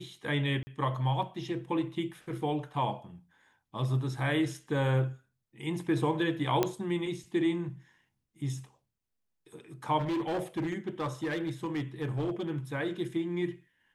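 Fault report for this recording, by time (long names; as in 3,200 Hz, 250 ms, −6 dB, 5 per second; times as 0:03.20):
0:00.63–0:00.67: drop-out 40 ms
0:06.63: click −12 dBFS
0:09.99–0:12.51: clipping −28 dBFS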